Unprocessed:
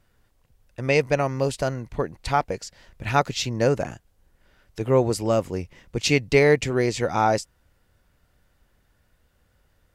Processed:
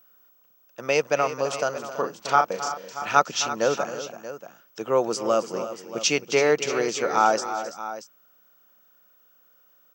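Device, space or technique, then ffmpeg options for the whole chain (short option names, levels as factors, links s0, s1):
old television with a line whistle: -filter_complex "[0:a]highpass=f=210:w=0.5412,highpass=f=210:w=1.3066,equalizer=f=260:t=q:w=4:g=-9,equalizer=f=390:t=q:w=4:g=-4,equalizer=f=1300:t=q:w=4:g=8,equalizer=f=2000:t=q:w=4:g=-7,equalizer=f=3200:t=q:w=4:g=4,equalizer=f=5900:t=q:w=4:g=8,lowpass=f=7400:w=0.5412,lowpass=f=7400:w=1.3066,aeval=exprs='val(0)+0.00178*sin(2*PI*15734*n/s)':c=same,equalizer=f=4000:t=o:w=0.52:g=-4.5,asettb=1/sr,asplit=3[s0][s1][s2];[s0]atrim=end=1.724[s3];[s1]atrim=start=1.72:end=3.19,asetpts=PTS-STARTPTS,afade=t=in:d=0.004:c=qsin,afade=t=out:st=1.466:d=0.004:c=qsin,asplit=2[s4][s5];[s5]adelay=36,volume=0.562[s6];[s4][s6]amix=inputs=2:normalize=0,atrim=end_sample=64827[s7];[s2]atrim=start=3.186[s8];[s3][s7]acrossfade=d=0.004:c1=hsin:c2=qsin[s9];[s9][s8]acrossfade=d=0.004:c1=qsin:c2=hsin,aecho=1:1:265|332|632:0.2|0.224|0.2"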